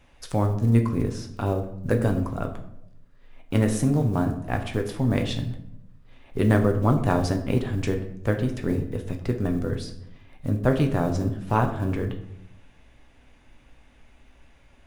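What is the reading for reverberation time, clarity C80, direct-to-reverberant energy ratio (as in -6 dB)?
0.80 s, 12.5 dB, 3.5 dB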